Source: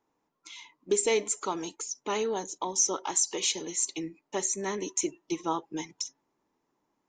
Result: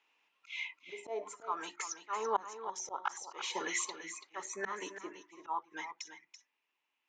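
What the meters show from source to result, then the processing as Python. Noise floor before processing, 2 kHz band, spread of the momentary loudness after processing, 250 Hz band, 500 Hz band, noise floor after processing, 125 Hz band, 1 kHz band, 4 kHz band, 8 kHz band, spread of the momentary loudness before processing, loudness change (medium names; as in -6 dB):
-80 dBFS, -0.5 dB, 13 LU, -15.5 dB, -11.5 dB, -84 dBFS, under -15 dB, -2.0 dB, -9.5 dB, -14.5 dB, 12 LU, -9.5 dB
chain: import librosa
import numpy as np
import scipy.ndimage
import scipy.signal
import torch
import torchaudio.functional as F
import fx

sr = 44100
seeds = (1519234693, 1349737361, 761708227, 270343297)

p1 = fx.auto_wah(x, sr, base_hz=700.0, top_hz=2700.0, q=5.3, full_db=-22.5, direction='down')
p2 = fx.rider(p1, sr, range_db=5, speed_s=0.5)
p3 = fx.auto_swell(p2, sr, attack_ms=320.0)
p4 = fx.hum_notches(p3, sr, base_hz=50, count=7)
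p5 = p4 + fx.echo_single(p4, sr, ms=334, db=-10.5, dry=0)
y = F.gain(torch.from_numpy(p5), 17.0).numpy()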